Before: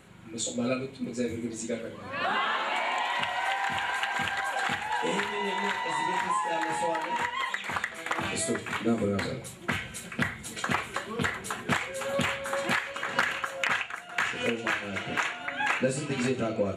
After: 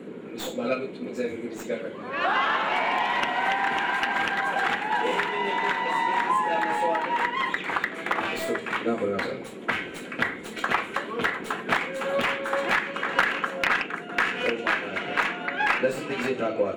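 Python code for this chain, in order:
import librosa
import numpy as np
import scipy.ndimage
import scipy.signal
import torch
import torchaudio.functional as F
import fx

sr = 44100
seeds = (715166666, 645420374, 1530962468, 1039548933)

y = fx.tracing_dist(x, sr, depth_ms=0.12)
y = fx.bass_treble(y, sr, bass_db=-15, treble_db=-12)
y = fx.dmg_noise_band(y, sr, seeds[0], low_hz=170.0, high_hz=490.0, level_db=-45.0)
y = y * 10.0 ** (5.0 / 20.0)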